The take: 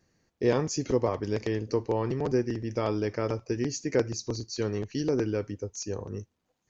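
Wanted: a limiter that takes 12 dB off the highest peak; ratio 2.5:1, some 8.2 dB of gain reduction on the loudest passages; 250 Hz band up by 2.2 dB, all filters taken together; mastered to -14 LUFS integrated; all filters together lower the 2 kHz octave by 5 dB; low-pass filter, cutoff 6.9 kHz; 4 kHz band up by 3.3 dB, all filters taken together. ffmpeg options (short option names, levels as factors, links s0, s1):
-af "lowpass=6900,equalizer=f=250:t=o:g=3,equalizer=f=2000:t=o:g=-8,equalizer=f=4000:t=o:g=7,acompressor=threshold=0.0282:ratio=2.5,volume=20,alimiter=limit=0.631:level=0:latency=1"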